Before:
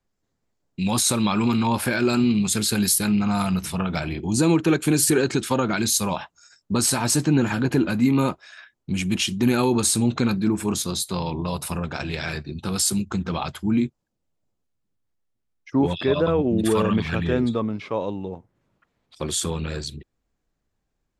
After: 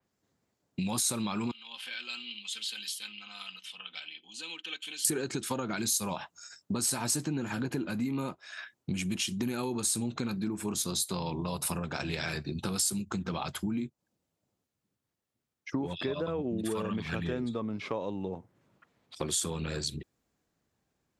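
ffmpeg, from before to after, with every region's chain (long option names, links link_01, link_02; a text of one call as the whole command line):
ffmpeg -i in.wav -filter_complex "[0:a]asettb=1/sr,asplit=3[link_01][link_02][link_03];[link_01]atrim=end=1.514[link_04];[link_02]atrim=start=1.51:end=5.05,asetpts=PTS-STARTPTS,afade=type=in:duration=0.004:curve=qsin,afade=type=out:start_time=3.536:duration=0.004:curve=qsin,bandpass=frequency=3100:width_type=q:width=7.9,aecho=1:1:3.9:0.51,atrim=end_sample=156114[link_05];[link_03]atrim=start=5.046[link_06];[link_04][link_05]acrossfade=duration=0.004:curve1=hsin:curve2=qsin[link_07];[link_07][link_06]acrossfade=duration=0.004:curve1=qsin:curve2=hsin,highpass=94,acompressor=threshold=-33dB:ratio=6,adynamicequalizer=threshold=0.00398:dfrequency=4700:dqfactor=0.7:tfrequency=4700:tqfactor=0.7:attack=5:release=100:ratio=0.375:range=2.5:mode=boostabove:tftype=highshelf,volume=2dB" out.wav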